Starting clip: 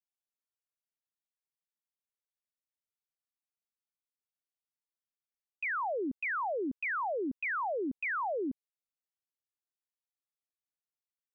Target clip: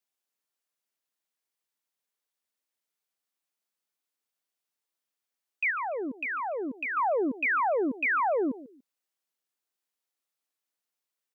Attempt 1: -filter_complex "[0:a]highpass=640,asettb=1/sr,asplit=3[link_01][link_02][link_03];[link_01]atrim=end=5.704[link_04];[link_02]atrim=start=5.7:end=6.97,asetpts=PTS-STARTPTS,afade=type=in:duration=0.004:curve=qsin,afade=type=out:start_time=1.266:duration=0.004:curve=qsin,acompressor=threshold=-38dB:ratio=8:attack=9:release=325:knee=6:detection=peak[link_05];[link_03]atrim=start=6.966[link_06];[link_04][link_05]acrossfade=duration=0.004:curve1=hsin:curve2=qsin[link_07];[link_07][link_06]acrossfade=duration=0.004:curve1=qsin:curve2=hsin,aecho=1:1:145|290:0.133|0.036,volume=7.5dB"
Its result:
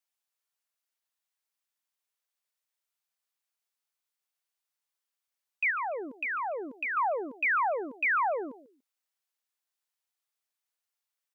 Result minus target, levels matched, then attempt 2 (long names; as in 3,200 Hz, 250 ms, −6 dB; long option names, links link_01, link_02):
250 Hz band −9.5 dB
-filter_complex "[0:a]highpass=230,asettb=1/sr,asplit=3[link_01][link_02][link_03];[link_01]atrim=end=5.704[link_04];[link_02]atrim=start=5.7:end=6.97,asetpts=PTS-STARTPTS,afade=type=in:duration=0.004:curve=qsin,afade=type=out:start_time=1.266:duration=0.004:curve=qsin,acompressor=threshold=-38dB:ratio=8:attack=9:release=325:knee=6:detection=peak[link_05];[link_03]atrim=start=6.966[link_06];[link_04][link_05]acrossfade=duration=0.004:curve1=hsin:curve2=qsin[link_07];[link_07][link_06]acrossfade=duration=0.004:curve1=qsin:curve2=hsin,aecho=1:1:145|290:0.133|0.036,volume=7.5dB"